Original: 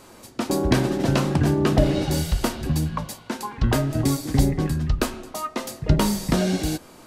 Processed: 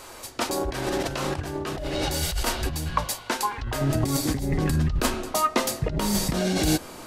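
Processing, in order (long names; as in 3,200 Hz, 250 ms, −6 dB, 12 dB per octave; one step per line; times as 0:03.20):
compressor whose output falls as the input rises −25 dBFS, ratio −1
parametric band 190 Hz −14.5 dB 1.7 octaves, from 0:03.81 −3.5 dB
level +3.5 dB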